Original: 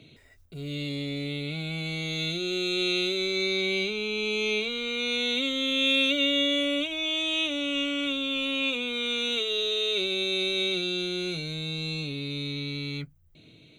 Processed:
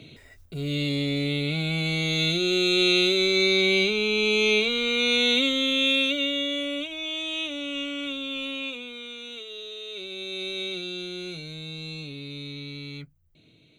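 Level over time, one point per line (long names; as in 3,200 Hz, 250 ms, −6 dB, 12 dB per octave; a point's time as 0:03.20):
0:05.32 +6 dB
0:06.41 −3 dB
0:08.45 −3 dB
0:09.16 −11 dB
0:09.85 −11 dB
0:10.49 −4.5 dB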